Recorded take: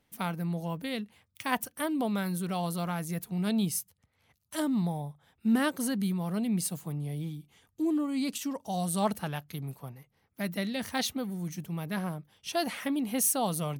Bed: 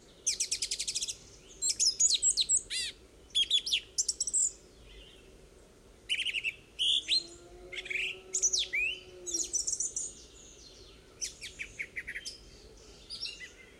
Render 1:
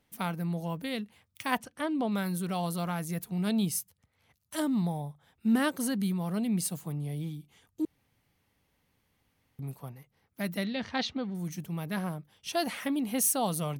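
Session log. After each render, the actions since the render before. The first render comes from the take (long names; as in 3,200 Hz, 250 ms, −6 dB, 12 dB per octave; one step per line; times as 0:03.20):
0:01.58–0:02.12: high-frequency loss of the air 79 metres
0:07.85–0:09.59: fill with room tone
0:10.64–0:11.35: low-pass filter 4,800 Hz 24 dB per octave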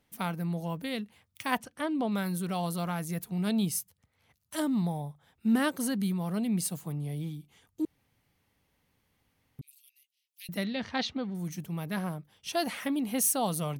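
0:09.61–0:10.49: elliptic high-pass filter 2,700 Hz, stop band 70 dB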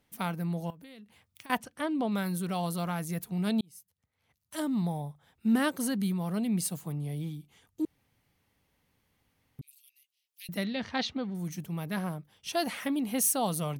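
0:00.70–0:01.50: downward compressor 8 to 1, threshold −47 dBFS
0:03.61–0:04.93: fade in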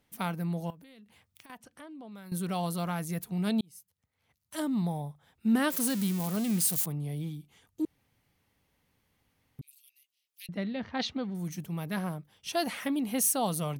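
0:00.75–0:02.32: downward compressor 2.5 to 1, threshold −52 dBFS
0:05.70–0:06.86: spike at every zero crossing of −25 dBFS
0:10.46–0:11.00: head-to-tape spacing loss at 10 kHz 24 dB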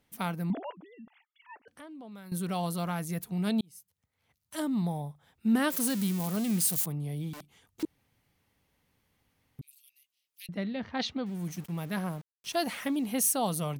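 0:00.50–0:01.68: three sine waves on the formant tracks
0:07.33–0:07.83: wrap-around overflow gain 40 dB
0:11.26–0:13.07: centre clipping without the shift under −47.5 dBFS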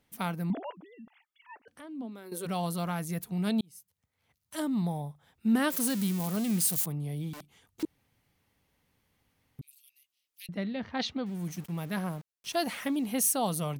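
0:01.83–0:02.45: high-pass with resonance 160 Hz → 510 Hz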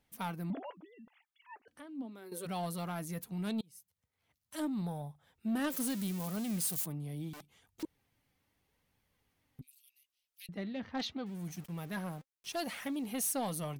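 flanger 0.78 Hz, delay 1.1 ms, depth 2.9 ms, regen +65%
soft clipping −28 dBFS, distortion −17 dB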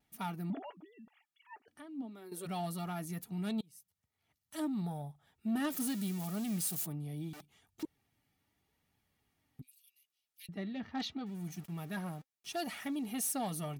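notch comb filter 520 Hz
pitch vibrato 0.73 Hz 17 cents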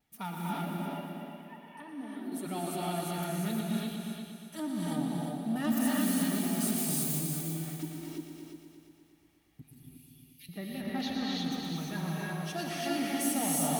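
on a send: echo machine with several playback heads 118 ms, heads all three, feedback 50%, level −9 dB
on the sum: reverb whose tail is shaped and stops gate 370 ms rising, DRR −3.5 dB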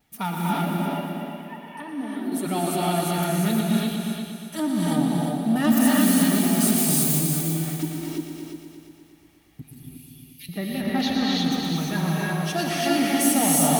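level +10.5 dB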